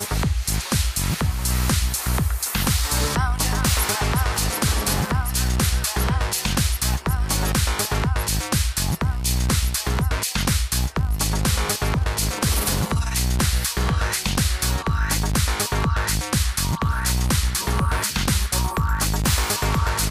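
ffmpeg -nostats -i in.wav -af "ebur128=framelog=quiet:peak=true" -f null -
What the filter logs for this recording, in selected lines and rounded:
Integrated loudness:
  I:         -21.8 LUFS
  Threshold: -31.8 LUFS
Loudness range:
  LRA:         0.9 LU
  Threshold: -41.8 LUFS
  LRA low:   -22.1 LUFS
  LRA high:  -21.2 LUFS
True peak:
  Peak:       -8.6 dBFS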